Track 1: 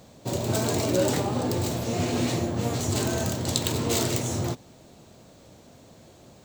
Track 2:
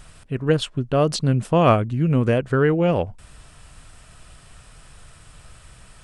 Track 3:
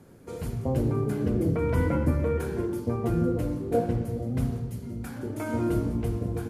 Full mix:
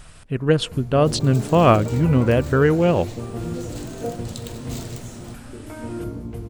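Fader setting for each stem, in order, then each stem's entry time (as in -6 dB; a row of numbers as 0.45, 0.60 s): -11.0, +1.5, -4.0 dB; 0.80, 0.00, 0.30 s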